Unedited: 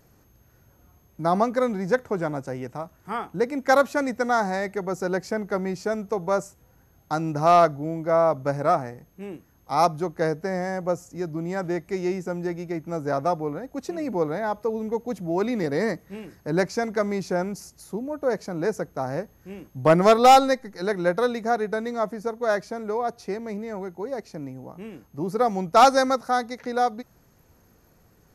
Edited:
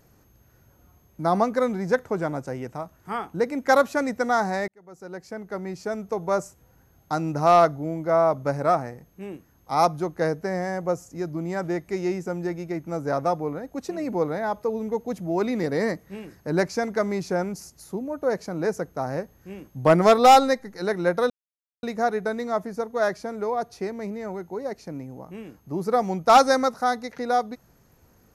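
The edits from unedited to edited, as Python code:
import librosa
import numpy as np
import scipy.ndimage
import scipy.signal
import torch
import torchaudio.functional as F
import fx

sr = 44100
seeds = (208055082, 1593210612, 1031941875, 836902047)

y = fx.edit(x, sr, fx.fade_in_span(start_s=4.68, length_s=1.71),
    fx.insert_silence(at_s=21.3, length_s=0.53), tone=tone)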